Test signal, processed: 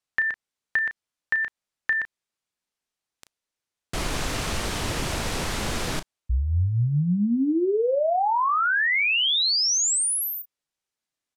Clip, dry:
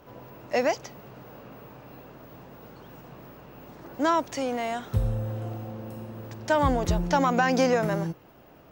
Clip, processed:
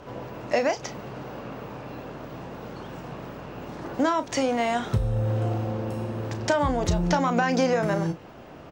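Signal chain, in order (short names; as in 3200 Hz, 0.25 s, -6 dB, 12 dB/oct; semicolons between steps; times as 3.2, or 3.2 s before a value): LPF 9000 Hz 12 dB/oct; compressor 6:1, threshold -29 dBFS; doubler 34 ms -11 dB; gain +8.5 dB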